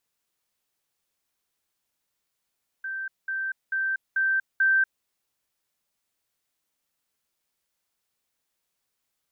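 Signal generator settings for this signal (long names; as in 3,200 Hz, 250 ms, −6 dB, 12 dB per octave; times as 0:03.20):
level staircase 1,560 Hz −29.5 dBFS, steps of 3 dB, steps 5, 0.24 s 0.20 s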